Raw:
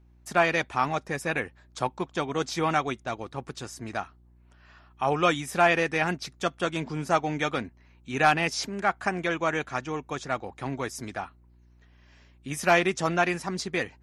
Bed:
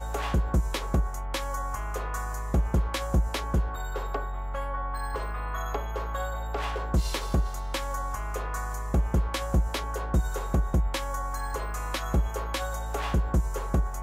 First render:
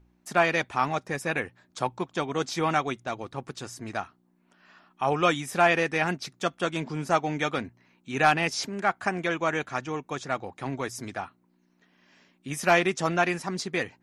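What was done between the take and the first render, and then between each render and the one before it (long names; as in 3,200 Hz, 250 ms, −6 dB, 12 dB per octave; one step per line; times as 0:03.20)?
hum removal 60 Hz, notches 2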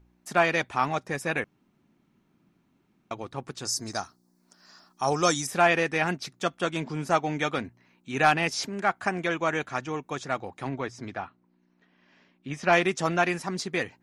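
0:01.44–0:03.11: fill with room tone
0:03.65–0:05.47: high shelf with overshoot 3,800 Hz +10 dB, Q 3
0:10.69–0:12.73: high-frequency loss of the air 130 metres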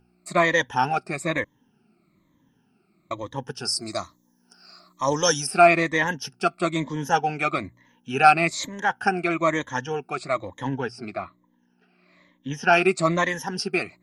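rippled gain that drifts along the octave scale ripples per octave 1.1, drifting −1.1 Hz, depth 18 dB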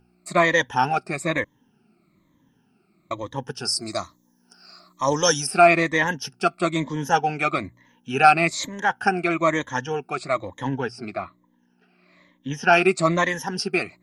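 level +1.5 dB
brickwall limiter −3 dBFS, peak gain reduction 1.5 dB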